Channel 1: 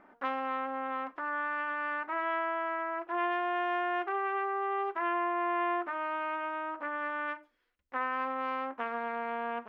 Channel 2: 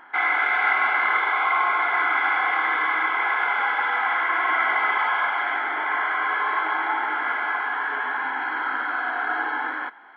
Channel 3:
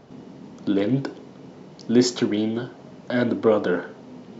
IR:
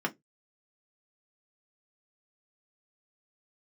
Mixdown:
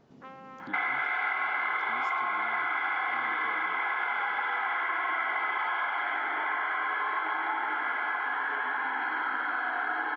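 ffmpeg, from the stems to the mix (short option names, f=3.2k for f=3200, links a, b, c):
-filter_complex "[0:a]volume=-13.5dB[a];[1:a]adelay=600,volume=2.5dB[b];[2:a]acompressor=threshold=-35dB:ratio=2,volume=-12.5dB[c];[a][b][c]amix=inputs=3:normalize=0,acompressor=threshold=-29dB:ratio=4"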